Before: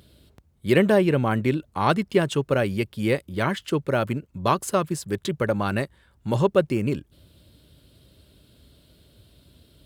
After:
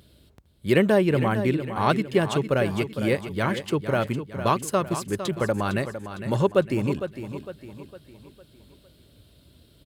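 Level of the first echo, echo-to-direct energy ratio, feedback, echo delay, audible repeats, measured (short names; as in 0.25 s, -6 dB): -10.5 dB, -9.5 dB, 44%, 0.456 s, 4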